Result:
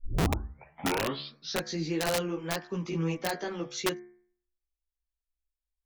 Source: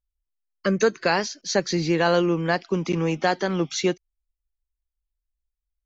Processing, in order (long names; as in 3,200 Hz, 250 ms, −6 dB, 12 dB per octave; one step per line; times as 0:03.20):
turntable start at the beginning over 1.69 s
multi-voice chorus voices 4, 1.2 Hz, delay 16 ms, depth 3.2 ms
hum removal 71.46 Hz, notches 33
wrap-around overflow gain 15 dB
level −6 dB